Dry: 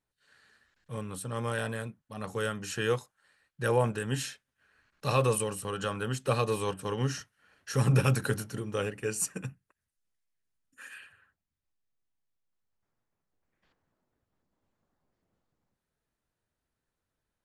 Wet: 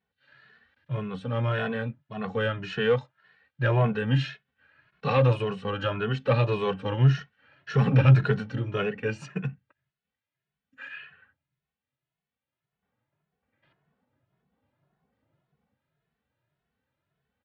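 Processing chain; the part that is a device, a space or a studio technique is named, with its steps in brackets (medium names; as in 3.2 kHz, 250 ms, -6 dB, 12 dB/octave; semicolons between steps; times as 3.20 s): barber-pole flanger into a guitar amplifier (endless flanger 2.3 ms +1.8 Hz; saturation -22.5 dBFS, distortion -17 dB; cabinet simulation 83–3500 Hz, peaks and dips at 140 Hz +7 dB, 340 Hz -5 dB, 1.1 kHz -3 dB); trim +9 dB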